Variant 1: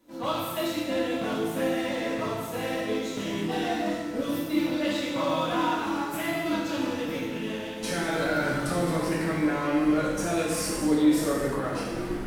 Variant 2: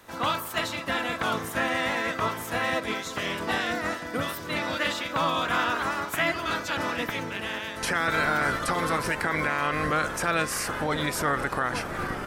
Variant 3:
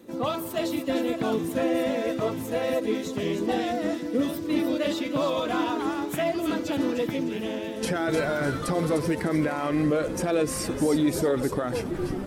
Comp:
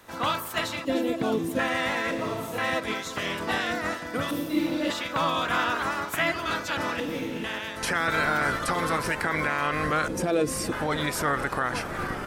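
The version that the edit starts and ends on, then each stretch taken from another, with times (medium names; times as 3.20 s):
2
0.85–1.59 s: from 3
2.11–2.58 s: from 1
4.31–4.90 s: from 1
7.00–7.44 s: from 1
10.08–10.72 s: from 3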